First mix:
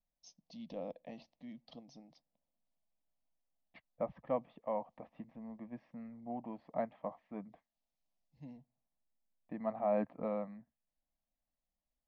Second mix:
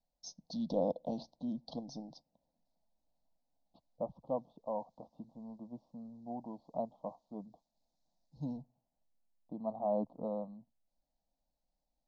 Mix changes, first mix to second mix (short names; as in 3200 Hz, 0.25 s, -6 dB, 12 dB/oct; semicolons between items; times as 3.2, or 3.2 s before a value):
first voice +11.5 dB; master: add Chebyshev band-stop 950–3900 Hz, order 3